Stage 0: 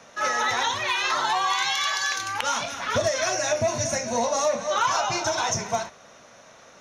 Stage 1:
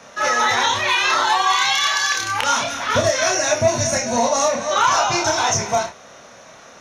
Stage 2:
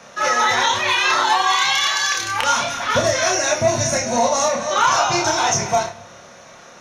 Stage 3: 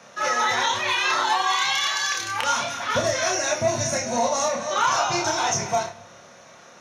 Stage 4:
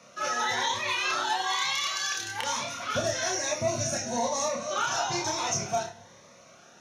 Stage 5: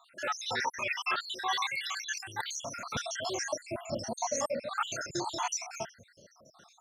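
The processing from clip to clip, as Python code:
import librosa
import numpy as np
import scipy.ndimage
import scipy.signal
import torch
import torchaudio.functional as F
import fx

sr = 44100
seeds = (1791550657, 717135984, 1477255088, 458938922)

y1 = fx.doubler(x, sr, ms=29.0, db=-3)
y1 = y1 * 10.0 ** (5.0 / 20.0)
y2 = fx.room_shoebox(y1, sr, seeds[0], volume_m3=3000.0, walls='furnished', distance_m=0.92)
y3 = scipy.signal.sosfilt(scipy.signal.butter(2, 70.0, 'highpass', fs=sr, output='sos'), y2)
y3 = y3 * 10.0 ** (-5.0 / 20.0)
y4 = fx.notch_cascade(y3, sr, direction='rising', hz=1.1)
y4 = y4 * 10.0 ** (-4.0 / 20.0)
y5 = fx.spec_dropout(y4, sr, seeds[1], share_pct=73)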